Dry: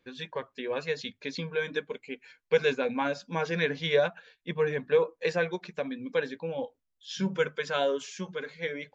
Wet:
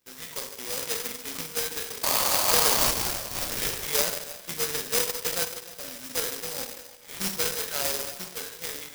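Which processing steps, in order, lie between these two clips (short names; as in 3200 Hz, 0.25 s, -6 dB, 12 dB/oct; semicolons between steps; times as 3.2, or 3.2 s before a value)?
spectral trails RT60 0.57 s; 0.72–1.61 comb 4.1 ms, depth 34%; 2.03–2.91 painted sound noise 500–1300 Hz -21 dBFS; 5.45–6.18 fade in; delay with a stepping band-pass 0.152 s, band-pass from 470 Hz, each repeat 0.7 oct, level -10 dB; spring tank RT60 1.1 s, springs 47/51 ms, chirp 70 ms, DRR 10 dB; 2.77–3.88 LPC vocoder at 8 kHz whisper; careless resampling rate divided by 8×, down none, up zero stuff; clock jitter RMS 0.036 ms; gain -10.5 dB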